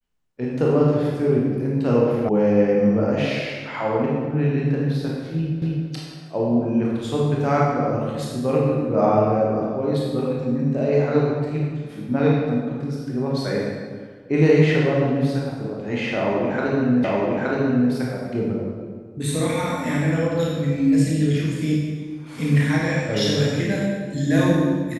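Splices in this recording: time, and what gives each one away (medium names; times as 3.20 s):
2.29 s: sound stops dead
5.62 s: repeat of the last 0.27 s
17.04 s: repeat of the last 0.87 s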